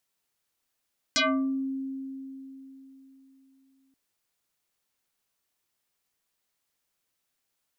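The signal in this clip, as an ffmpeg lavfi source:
ffmpeg -f lavfi -i "aevalsrc='0.1*pow(10,-3*t/3.71)*sin(2*PI*268*t+7.6*pow(10,-3*t/0.46)*sin(2*PI*3.37*268*t))':duration=2.78:sample_rate=44100" out.wav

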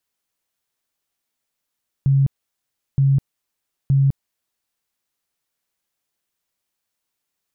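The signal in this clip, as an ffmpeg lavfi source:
ffmpeg -f lavfi -i "aevalsrc='0.251*sin(2*PI*137*mod(t,0.92))*lt(mod(t,0.92),28/137)':duration=2.76:sample_rate=44100" out.wav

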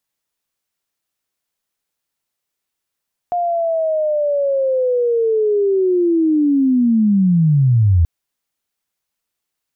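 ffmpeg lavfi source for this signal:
ffmpeg -f lavfi -i "aevalsrc='pow(10,(-15.5+6.5*t/4.73)/20)*sin(2*PI*(710*t-631*t*t/(2*4.73)))':duration=4.73:sample_rate=44100" out.wav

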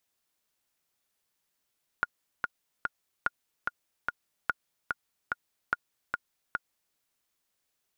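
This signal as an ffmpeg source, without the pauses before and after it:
ffmpeg -f lavfi -i "aevalsrc='pow(10,(-12.5-3.5*gte(mod(t,3*60/146),60/146))/20)*sin(2*PI*1430*mod(t,60/146))*exp(-6.91*mod(t,60/146)/0.03)':duration=4.93:sample_rate=44100" out.wav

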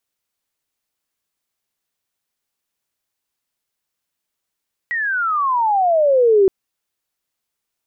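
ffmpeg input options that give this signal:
ffmpeg -f lavfi -i "aevalsrc='pow(10,(-8.5+10*(t/1.57-1))/20)*sin(2*PI*1940*1.57/(-28.5*log(2)/12)*(exp(-28.5*log(2)/12*t/1.57)-1))':duration=1.57:sample_rate=44100" out.wav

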